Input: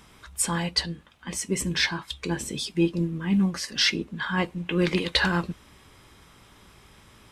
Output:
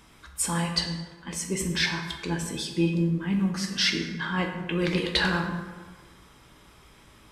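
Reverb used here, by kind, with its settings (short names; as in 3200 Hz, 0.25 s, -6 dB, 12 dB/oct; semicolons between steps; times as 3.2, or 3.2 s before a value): plate-style reverb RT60 1.4 s, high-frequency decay 0.55×, DRR 3 dB; gain -2.5 dB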